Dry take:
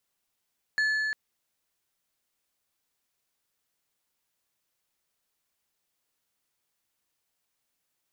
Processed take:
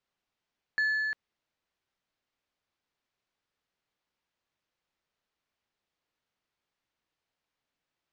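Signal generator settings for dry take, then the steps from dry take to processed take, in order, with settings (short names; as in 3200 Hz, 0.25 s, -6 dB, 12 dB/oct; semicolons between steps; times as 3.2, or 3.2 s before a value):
metal hit plate, length 0.35 s, lowest mode 1730 Hz, decay 3.76 s, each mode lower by 12 dB, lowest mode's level -22 dB
air absorption 160 m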